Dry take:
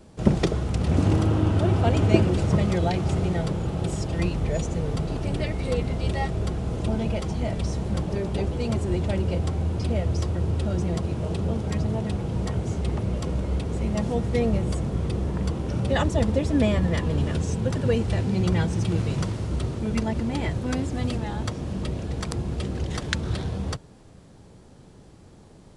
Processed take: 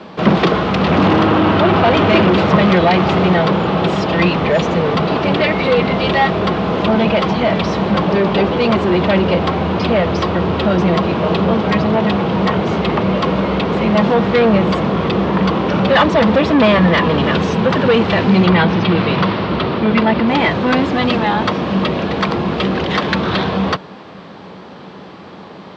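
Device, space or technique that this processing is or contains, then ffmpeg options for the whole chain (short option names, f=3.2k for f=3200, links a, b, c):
overdrive pedal into a guitar cabinet: -filter_complex "[0:a]asplit=2[a][b];[b]highpass=f=720:p=1,volume=30dB,asoftclip=type=tanh:threshold=-1.5dB[c];[a][c]amix=inputs=2:normalize=0,lowpass=f=6.6k:p=1,volume=-6dB,highpass=82,equalizer=f=120:t=q:w=4:g=-5,equalizer=f=190:t=q:w=4:g=7,equalizer=f=1.1k:t=q:w=4:g=5,lowpass=f=4k:w=0.5412,lowpass=f=4k:w=1.3066,asettb=1/sr,asplit=3[d][e][f];[d]atrim=end=18.464[g];[e]atrim=start=18.46:end=20.28,asetpts=PTS-STARTPTS,afade=t=in:d=0.004:c=qsin,afade=t=out:st=1.816:d=0.004:c=qsin,lowpass=f=4.9k:w=0.5412,lowpass=f=4.9k:w=1.3066[h];[f]atrim=start=20.276[i];[g][h]acrossfade=d=0.004:c1=hsin:c2=qsin[j];[j][i]acrossfade=d=0.004:c1=qsin:c2=hsin,volume=-1.5dB"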